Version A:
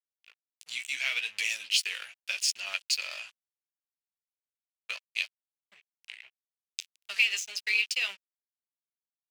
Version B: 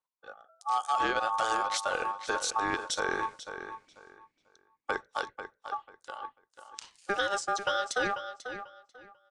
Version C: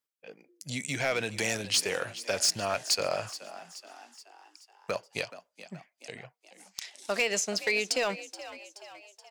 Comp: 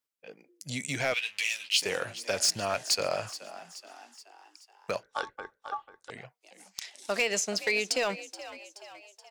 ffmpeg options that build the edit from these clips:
-filter_complex "[2:a]asplit=3[s0][s1][s2];[s0]atrim=end=1.142[s3];[0:a]atrim=start=1.138:end=1.822[s4];[s1]atrim=start=1.818:end=5.032[s5];[1:a]atrim=start=5.028:end=6.102[s6];[s2]atrim=start=6.098[s7];[s3][s4]acrossfade=d=0.004:c1=hsin:c2=hsin[s8];[s8][s5]acrossfade=d=0.004:c1=hsin:c2=hsin[s9];[s9][s6]acrossfade=d=0.004:c1=hsin:c2=hsin[s10];[s10][s7]acrossfade=d=0.004:c1=hsin:c2=hsin"

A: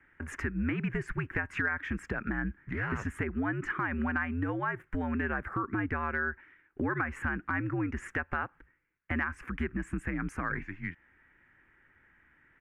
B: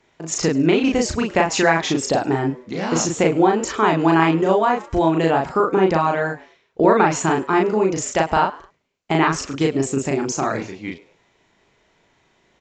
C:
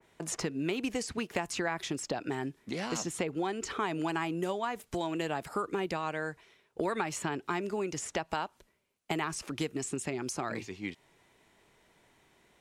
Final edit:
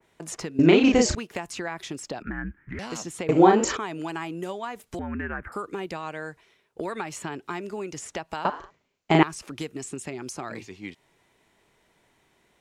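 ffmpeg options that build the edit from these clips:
-filter_complex "[1:a]asplit=3[s0][s1][s2];[0:a]asplit=2[s3][s4];[2:a]asplit=6[s5][s6][s7][s8][s9][s10];[s5]atrim=end=0.592[s11];[s0]atrim=start=0.588:end=1.152[s12];[s6]atrim=start=1.148:end=2.222[s13];[s3]atrim=start=2.218:end=2.792[s14];[s7]atrim=start=2.788:end=3.292[s15];[s1]atrim=start=3.288:end=3.772[s16];[s8]atrim=start=3.768:end=4.992[s17];[s4]atrim=start=4.988:end=5.522[s18];[s9]atrim=start=5.518:end=8.452[s19];[s2]atrim=start=8.448:end=9.232[s20];[s10]atrim=start=9.228[s21];[s11][s12]acrossfade=d=0.004:c1=hsin:c2=hsin[s22];[s22][s13]acrossfade=d=0.004:c1=hsin:c2=hsin[s23];[s23][s14]acrossfade=d=0.004:c1=hsin:c2=hsin[s24];[s24][s15]acrossfade=d=0.004:c1=hsin:c2=hsin[s25];[s25][s16]acrossfade=d=0.004:c1=hsin:c2=hsin[s26];[s26][s17]acrossfade=d=0.004:c1=hsin:c2=hsin[s27];[s27][s18]acrossfade=d=0.004:c1=hsin:c2=hsin[s28];[s28][s19]acrossfade=d=0.004:c1=hsin:c2=hsin[s29];[s29][s20]acrossfade=d=0.004:c1=hsin:c2=hsin[s30];[s30][s21]acrossfade=d=0.004:c1=hsin:c2=hsin"

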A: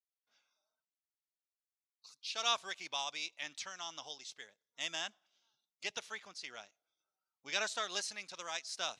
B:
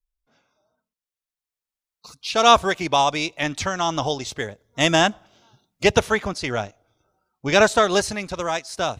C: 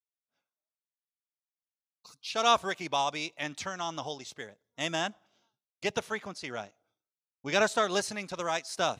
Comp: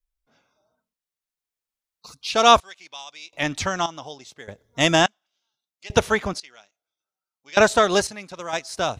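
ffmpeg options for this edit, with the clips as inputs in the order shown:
-filter_complex "[0:a]asplit=3[s0][s1][s2];[2:a]asplit=2[s3][s4];[1:a]asplit=6[s5][s6][s7][s8][s9][s10];[s5]atrim=end=2.602[s11];[s0]atrim=start=2.598:end=3.332[s12];[s6]atrim=start=3.328:end=3.862[s13];[s3]atrim=start=3.858:end=4.482[s14];[s7]atrim=start=4.478:end=5.062[s15];[s1]atrim=start=5.058:end=5.902[s16];[s8]atrim=start=5.898:end=6.402[s17];[s2]atrim=start=6.398:end=7.572[s18];[s9]atrim=start=7.568:end=8.072[s19];[s4]atrim=start=8.068:end=8.532[s20];[s10]atrim=start=8.528[s21];[s11][s12]acrossfade=d=0.004:c1=hsin:c2=hsin[s22];[s22][s13]acrossfade=d=0.004:c1=hsin:c2=hsin[s23];[s23][s14]acrossfade=d=0.004:c1=hsin:c2=hsin[s24];[s24][s15]acrossfade=d=0.004:c1=hsin:c2=hsin[s25];[s25][s16]acrossfade=d=0.004:c1=hsin:c2=hsin[s26];[s26][s17]acrossfade=d=0.004:c1=hsin:c2=hsin[s27];[s27][s18]acrossfade=d=0.004:c1=hsin:c2=hsin[s28];[s28][s19]acrossfade=d=0.004:c1=hsin:c2=hsin[s29];[s29][s20]acrossfade=d=0.004:c1=hsin:c2=hsin[s30];[s30][s21]acrossfade=d=0.004:c1=hsin:c2=hsin"

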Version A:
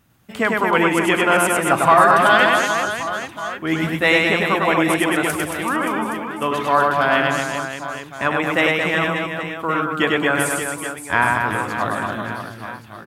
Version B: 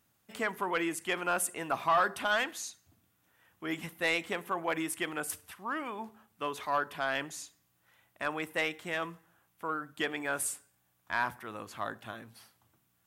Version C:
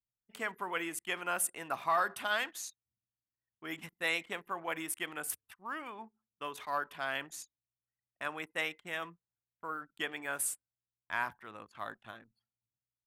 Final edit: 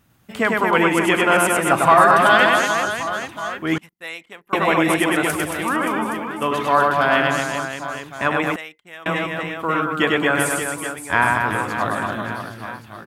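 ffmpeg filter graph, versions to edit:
-filter_complex "[2:a]asplit=2[s0][s1];[0:a]asplit=3[s2][s3][s4];[s2]atrim=end=3.782[s5];[s0]atrim=start=3.778:end=4.532[s6];[s3]atrim=start=4.528:end=8.562[s7];[s1]atrim=start=8.558:end=9.062[s8];[s4]atrim=start=9.058[s9];[s5][s6]acrossfade=d=0.004:c1=hsin:c2=hsin[s10];[s10][s7]acrossfade=d=0.004:c1=hsin:c2=hsin[s11];[s11][s8]acrossfade=d=0.004:c1=hsin:c2=hsin[s12];[s12][s9]acrossfade=d=0.004:c1=hsin:c2=hsin"

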